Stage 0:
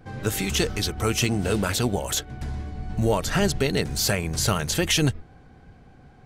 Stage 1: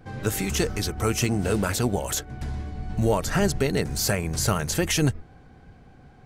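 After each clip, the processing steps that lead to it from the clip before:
dynamic equaliser 3,400 Hz, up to −7 dB, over −41 dBFS, Q 1.6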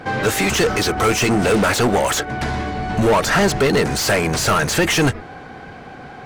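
mid-hump overdrive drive 26 dB, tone 2,700 Hz, clips at −10.5 dBFS
level +3 dB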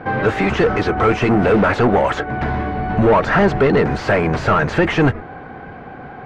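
low-pass filter 1,900 Hz 12 dB per octave
level +2.5 dB

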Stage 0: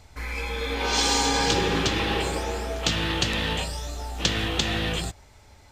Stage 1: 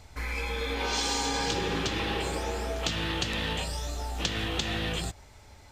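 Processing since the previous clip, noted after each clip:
downward compressor 2.5 to 1, threshold −29 dBFS, peak gain reduction 8 dB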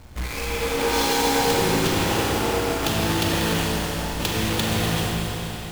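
each half-wave held at its own peak
four-comb reverb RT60 3.9 s, combs from 32 ms, DRR −2 dB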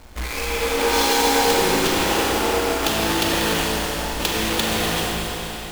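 parametric band 120 Hz −14 dB 1.1 octaves
level +3.5 dB

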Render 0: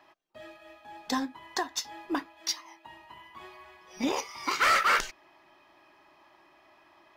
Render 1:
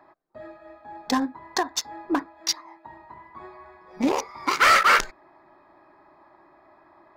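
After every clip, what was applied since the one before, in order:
adaptive Wiener filter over 15 samples
level +7 dB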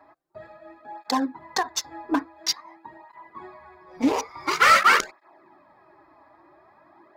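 through-zero flanger with one copy inverted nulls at 0.48 Hz, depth 5.8 ms
level +3 dB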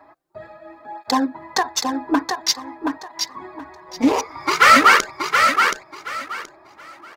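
repeating echo 725 ms, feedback 22%, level −5 dB
level +5 dB

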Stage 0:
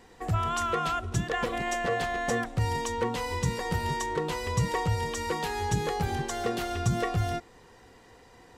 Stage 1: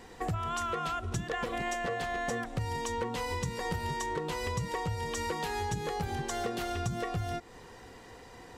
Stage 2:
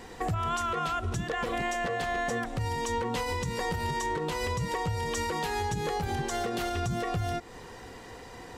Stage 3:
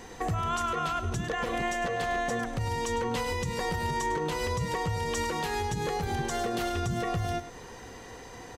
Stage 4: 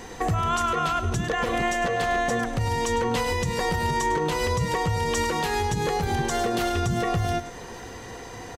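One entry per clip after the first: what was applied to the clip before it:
downward compressor 6 to 1, threshold −35 dBFS, peak gain reduction 13.5 dB; level +4 dB
brickwall limiter −27 dBFS, peak gain reduction 7 dB; level +5 dB
single-tap delay 103 ms −12 dB; steady tone 6,200 Hz −57 dBFS
single-tap delay 1,171 ms −24 dB; level +5.5 dB

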